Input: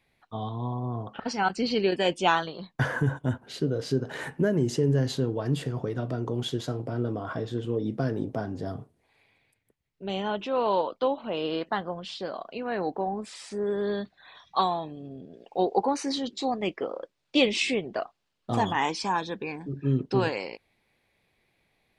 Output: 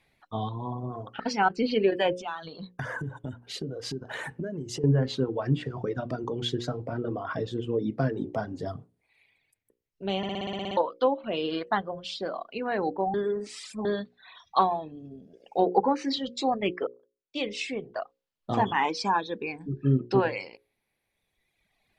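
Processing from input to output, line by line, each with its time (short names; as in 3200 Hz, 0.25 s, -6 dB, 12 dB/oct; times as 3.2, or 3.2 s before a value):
2.19–4.84 compressor, threshold -32 dBFS
10.17 stutter in place 0.06 s, 10 plays
13.14–13.85 reverse
16.87–18.89 fade in
whole clip: reverb removal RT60 1.7 s; treble ducked by the level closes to 1800 Hz, closed at -21.5 dBFS; notches 60/120/180/240/300/360/420/480/540 Hz; gain +3 dB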